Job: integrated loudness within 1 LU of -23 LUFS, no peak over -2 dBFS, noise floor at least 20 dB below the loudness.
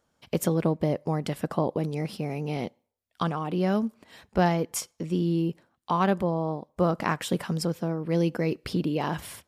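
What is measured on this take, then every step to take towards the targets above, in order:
loudness -28.0 LUFS; peak -10.0 dBFS; loudness target -23.0 LUFS
-> gain +5 dB

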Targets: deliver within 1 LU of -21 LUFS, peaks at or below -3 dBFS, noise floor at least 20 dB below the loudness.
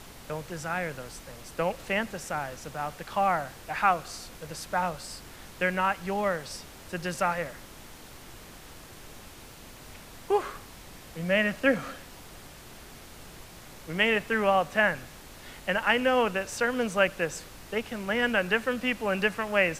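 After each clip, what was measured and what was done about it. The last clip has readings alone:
noise floor -48 dBFS; noise floor target -49 dBFS; loudness -28.5 LUFS; peak -7.5 dBFS; loudness target -21.0 LUFS
-> noise print and reduce 6 dB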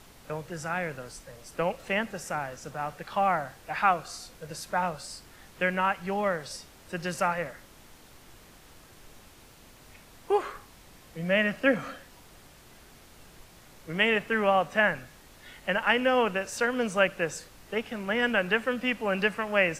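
noise floor -54 dBFS; loudness -28.0 LUFS; peak -7.5 dBFS; loudness target -21.0 LUFS
-> gain +7 dB; limiter -3 dBFS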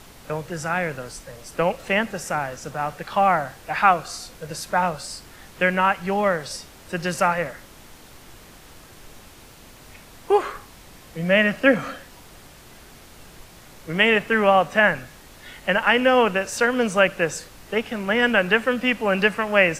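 loudness -21.5 LUFS; peak -3.0 dBFS; noise floor -47 dBFS

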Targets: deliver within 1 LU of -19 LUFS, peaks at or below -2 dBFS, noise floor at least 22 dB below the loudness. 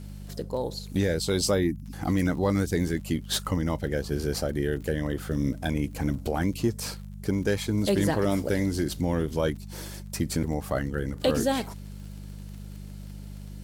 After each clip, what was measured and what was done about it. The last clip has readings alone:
ticks 38/s; hum 50 Hz; harmonics up to 200 Hz; hum level -37 dBFS; loudness -28.0 LUFS; peak -13.0 dBFS; loudness target -19.0 LUFS
-> de-click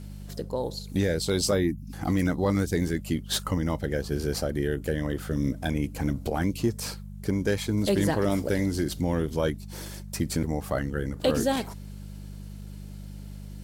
ticks 0.29/s; hum 50 Hz; harmonics up to 200 Hz; hum level -37 dBFS
-> de-hum 50 Hz, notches 4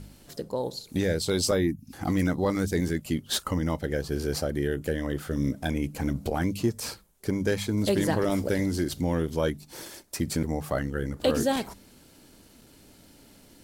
hum none; loudness -28.5 LUFS; peak -12.5 dBFS; loudness target -19.0 LUFS
-> gain +9.5 dB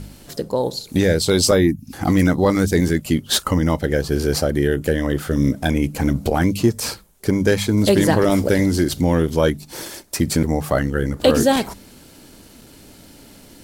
loudness -19.0 LUFS; peak -3.0 dBFS; noise floor -45 dBFS

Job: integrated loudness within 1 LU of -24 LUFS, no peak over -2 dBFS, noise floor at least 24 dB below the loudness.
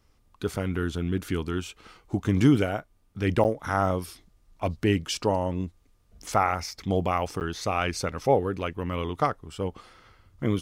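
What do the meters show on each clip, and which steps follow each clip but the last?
dropouts 2; longest dropout 9.1 ms; loudness -27.5 LUFS; peak -7.5 dBFS; loudness target -24.0 LUFS
-> interpolate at 3.44/7.4, 9.1 ms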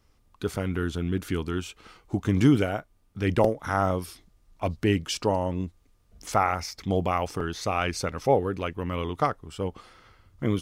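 dropouts 0; loudness -27.5 LUFS; peak -6.5 dBFS; loudness target -24.0 LUFS
-> gain +3.5 dB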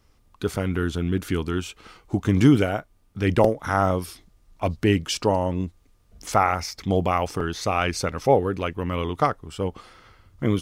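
loudness -24.0 LUFS; peak -3.0 dBFS; noise floor -60 dBFS

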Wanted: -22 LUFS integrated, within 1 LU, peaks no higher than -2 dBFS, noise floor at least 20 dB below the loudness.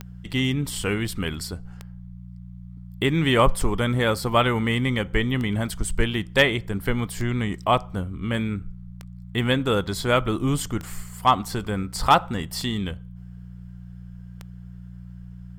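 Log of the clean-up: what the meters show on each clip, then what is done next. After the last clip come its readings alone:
clicks 9; hum 60 Hz; harmonics up to 180 Hz; hum level -37 dBFS; loudness -24.0 LUFS; peak -5.5 dBFS; loudness target -22.0 LUFS
-> de-click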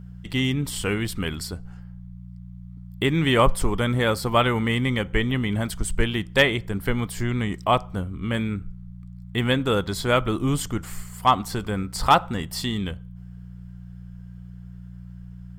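clicks 0; hum 60 Hz; harmonics up to 180 Hz; hum level -37 dBFS
-> de-hum 60 Hz, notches 3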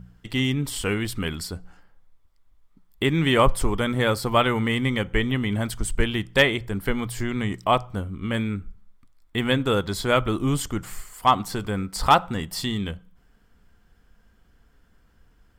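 hum none; loudness -24.0 LUFS; peak -6.0 dBFS; loudness target -22.0 LUFS
-> gain +2 dB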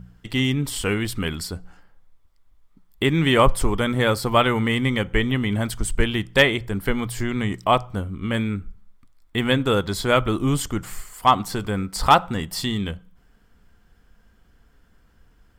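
loudness -22.0 LUFS; peak -4.0 dBFS; noise floor -58 dBFS

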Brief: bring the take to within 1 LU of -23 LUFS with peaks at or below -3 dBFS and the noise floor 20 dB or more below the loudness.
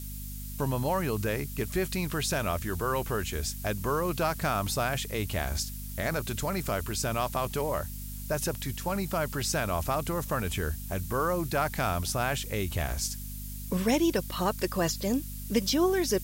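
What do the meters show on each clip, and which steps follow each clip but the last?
hum 50 Hz; harmonics up to 250 Hz; hum level -37 dBFS; noise floor -39 dBFS; noise floor target -50 dBFS; loudness -30.0 LUFS; peak -13.0 dBFS; loudness target -23.0 LUFS
-> notches 50/100/150/200/250 Hz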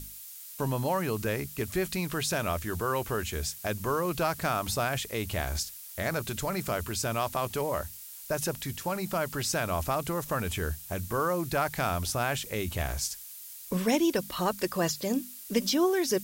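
hum none; noise floor -45 dBFS; noise floor target -51 dBFS
-> denoiser 6 dB, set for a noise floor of -45 dBFS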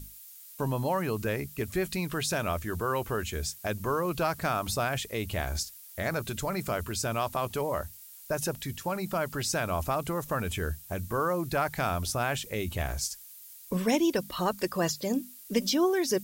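noise floor -49 dBFS; noise floor target -51 dBFS
-> denoiser 6 dB, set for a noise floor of -49 dBFS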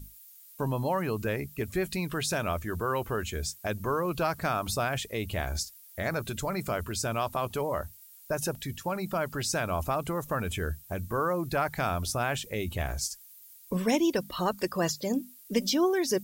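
noise floor -53 dBFS; loudness -31.0 LUFS; peak -13.5 dBFS; loudness target -23.0 LUFS
-> gain +8 dB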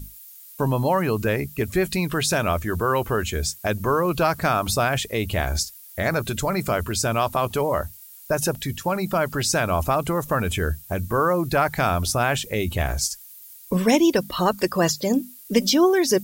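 loudness -23.0 LUFS; peak -5.5 dBFS; noise floor -45 dBFS

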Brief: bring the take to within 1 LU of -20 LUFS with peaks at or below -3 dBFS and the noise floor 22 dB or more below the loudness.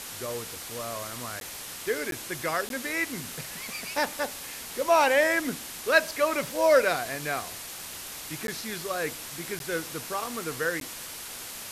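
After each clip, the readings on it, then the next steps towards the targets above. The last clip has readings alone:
dropouts 6; longest dropout 12 ms; noise floor -40 dBFS; noise floor target -51 dBFS; loudness -28.5 LUFS; peak -9.0 dBFS; loudness target -20.0 LUFS
-> interpolate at 1.4/2.11/2.69/8.47/9.59/10.8, 12 ms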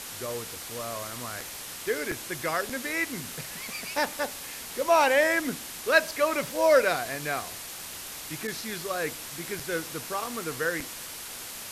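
dropouts 0; noise floor -40 dBFS; noise floor target -51 dBFS
-> noise print and reduce 11 dB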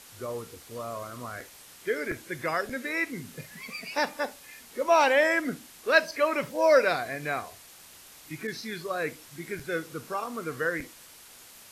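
noise floor -51 dBFS; loudness -28.5 LUFS; peak -9.0 dBFS; loudness target -20.0 LUFS
-> gain +8.5 dB; limiter -3 dBFS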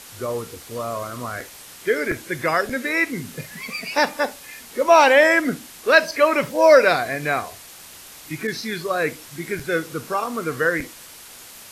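loudness -20.0 LUFS; peak -3.0 dBFS; noise floor -42 dBFS

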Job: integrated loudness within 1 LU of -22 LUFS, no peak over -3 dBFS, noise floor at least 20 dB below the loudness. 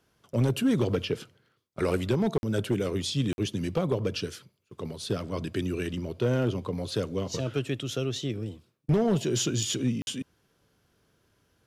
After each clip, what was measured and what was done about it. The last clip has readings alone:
clipped 0.7%; flat tops at -18.0 dBFS; dropouts 3; longest dropout 51 ms; loudness -29.5 LUFS; peak -18.0 dBFS; loudness target -22.0 LUFS
-> clip repair -18 dBFS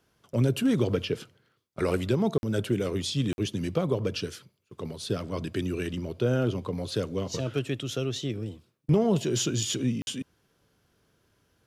clipped 0.0%; dropouts 3; longest dropout 51 ms
-> interpolate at 2.38/3.33/10.02, 51 ms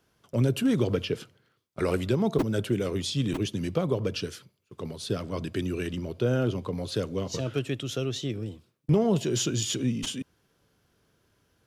dropouts 0; loudness -29.0 LUFS; peak -10.5 dBFS; loudness target -22.0 LUFS
-> gain +7 dB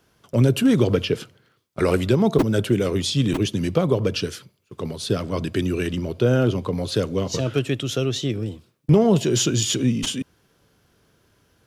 loudness -22.0 LUFS; peak -3.5 dBFS; noise floor -64 dBFS

